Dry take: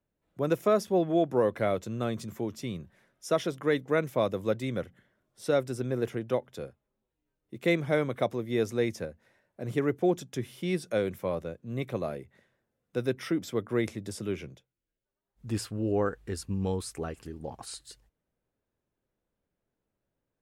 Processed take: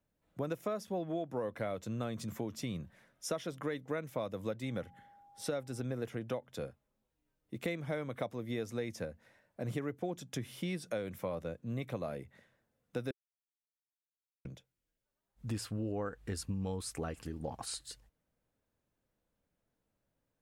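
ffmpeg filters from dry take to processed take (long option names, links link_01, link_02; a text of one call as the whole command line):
ffmpeg -i in.wav -filter_complex "[0:a]asettb=1/sr,asplit=3[link_01][link_02][link_03];[link_01]atrim=end=4.654[link_04];[link_02]atrim=start=4.65:end=5.83,asetpts=PTS-STARTPTS,afade=type=in:duration=0.004:curve=qsin,afade=type=out:start_time=1.176:duration=0.004:curve=qsin,aeval=exprs='val(0)+0.00112*sin(2*PI*810*n/s)':channel_layout=same[link_05];[link_03]atrim=start=5.826[link_06];[link_04][link_05]acrossfade=duration=0.004:curve1=hsin:curve2=qsin[link_07];[link_07][link_06]acrossfade=duration=0.004:curve1=qsin:curve2=hsin,asplit=3[link_08][link_09][link_10];[link_08]atrim=end=13.11,asetpts=PTS-STARTPTS,afade=type=out:start_time=13.106:duration=0.004:curve=hsin[link_11];[link_09]atrim=start=13.11:end=14.45,asetpts=PTS-STARTPTS,volume=0[link_12];[link_10]atrim=start=14.45,asetpts=PTS-STARTPTS,afade=type=in:duration=0.004:curve=hsin[link_13];[link_11][link_12][link_13]concat=n=3:v=0:a=1,equalizer=frequency=380:width=6.3:gain=-7.5,acompressor=threshold=-35dB:ratio=6,volume=1dB" out.wav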